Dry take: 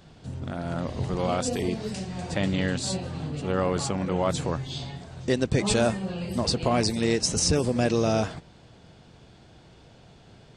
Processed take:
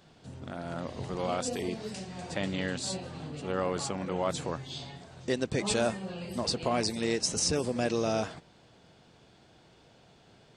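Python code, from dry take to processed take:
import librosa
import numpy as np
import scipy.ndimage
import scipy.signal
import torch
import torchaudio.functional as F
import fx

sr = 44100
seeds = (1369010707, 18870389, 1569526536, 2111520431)

y = fx.low_shelf(x, sr, hz=140.0, db=-10.5)
y = y * librosa.db_to_amplitude(-4.0)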